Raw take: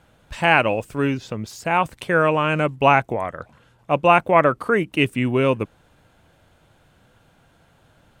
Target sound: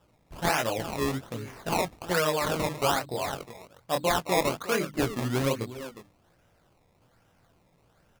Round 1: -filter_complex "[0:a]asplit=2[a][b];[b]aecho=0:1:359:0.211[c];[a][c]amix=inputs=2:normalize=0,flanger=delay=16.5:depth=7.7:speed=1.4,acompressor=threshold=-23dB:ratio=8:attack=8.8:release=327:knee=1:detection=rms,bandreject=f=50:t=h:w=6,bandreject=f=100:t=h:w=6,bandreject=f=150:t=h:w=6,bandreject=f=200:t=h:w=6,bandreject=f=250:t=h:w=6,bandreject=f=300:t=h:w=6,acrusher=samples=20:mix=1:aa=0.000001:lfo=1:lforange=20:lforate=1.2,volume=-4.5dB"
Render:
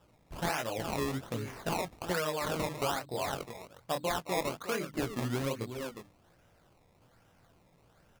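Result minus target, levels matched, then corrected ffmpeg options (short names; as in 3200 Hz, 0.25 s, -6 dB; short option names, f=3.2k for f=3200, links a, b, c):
compressor: peak gain reduction +7.5 dB
-filter_complex "[0:a]asplit=2[a][b];[b]aecho=0:1:359:0.211[c];[a][c]amix=inputs=2:normalize=0,flanger=delay=16.5:depth=7.7:speed=1.4,acompressor=threshold=-14.5dB:ratio=8:attack=8.8:release=327:knee=1:detection=rms,bandreject=f=50:t=h:w=6,bandreject=f=100:t=h:w=6,bandreject=f=150:t=h:w=6,bandreject=f=200:t=h:w=6,bandreject=f=250:t=h:w=6,bandreject=f=300:t=h:w=6,acrusher=samples=20:mix=1:aa=0.000001:lfo=1:lforange=20:lforate=1.2,volume=-4.5dB"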